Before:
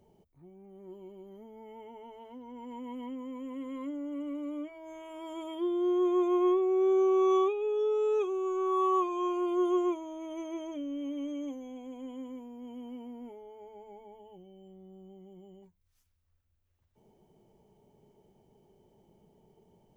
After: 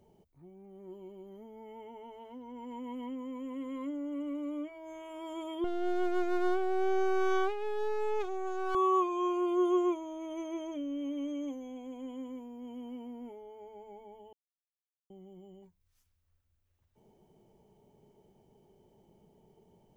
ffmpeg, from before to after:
ffmpeg -i in.wav -filter_complex "[0:a]asettb=1/sr,asplit=3[link_01][link_02][link_03];[link_01]atrim=end=5.644[link_04];[link_02]atrim=start=5.64:end=8.75,asetpts=PTS-STARTPTS,afade=type=in:duration=0.004:curve=qsin,afade=type=out:start_time=3.106:duration=0.004:curve=qsin,aeval=exprs='max(val(0),0)':channel_layout=same[link_05];[link_03]atrim=start=8.746[link_06];[link_04][link_05]acrossfade=duration=0.004:curve1=hsin:curve2=qsin[link_07];[link_07][link_06]acrossfade=duration=0.004:curve1=qsin:curve2=hsin,asplit=3[link_08][link_09][link_10];[link_08]atrim=end=14.33,asetpts=PTS-STARTPTS,afade=type=out:start_time=14.326:duration=0.004:curve=hsin[link_11];[link_09]atrim=start=14.33:end=15.1,asetpts=PTS-STARTPTS,volume=0[link_12];[link_10]atrim=start=15.1,asetpts=PTS-STARTPTS,afade=type=in:duration=0.004:curve=hsin[link_13];[link_11][link_12][link_13]concat=n=3:v=0:a=1" out.wav

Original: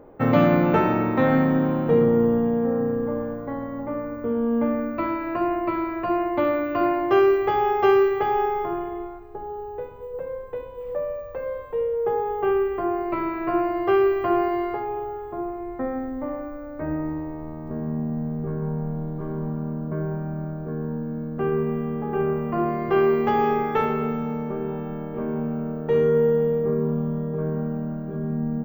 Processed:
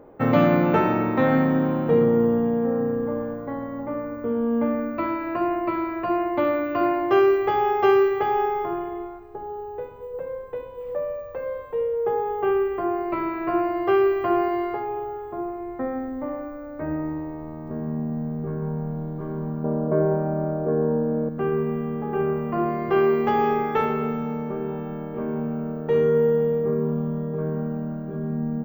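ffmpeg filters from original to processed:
ffmpeg -i in.wav -filter_complex "[0:a]asettb=1/sr,asplit=3[link_01][link_02][link_03];[link_01]atrim=end=19.644[link_04];[link_02]atrim=start=19.64:end=21.29,asetpts=PTS-STARTPTS,afade=type=in:duration=0.004:curve=qsin,afade=type=out:start_time=1.646:duration=0.004:curve=qsin,equalizer=frequency=550:width_type=o:width=1.8:gain=13.5[link_05];[link_03]atrim=start=21.286[link_06];[link_04][link_05]acrossfade=duration=0.004:curve1=hsin:curve2=qsin[link_07];[link_07][link_06]acrossfade=duration=0.004:curve1=qsin:curve2=hsin,lowshelf=frequency=60:gain=-7" out.wav

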